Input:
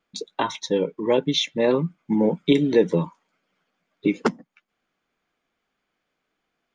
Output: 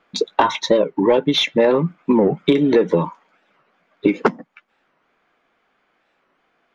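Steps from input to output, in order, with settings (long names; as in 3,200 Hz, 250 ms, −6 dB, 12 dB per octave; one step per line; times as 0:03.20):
in parallel at −1.5 dB: speech leveller within 4 dB
on the sum: mid-hump overdrive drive 12 dB, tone 3,000 Hz, clips at −1.5 dBFS
high-shelf EQ 2,800 Hz −10 dB
downward compressor 6 to 1, threshold −17 dBFS, peak gain reduction 9.5 dB
wow of a warped record 45 rpm, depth 250 cents
level +5.5 dB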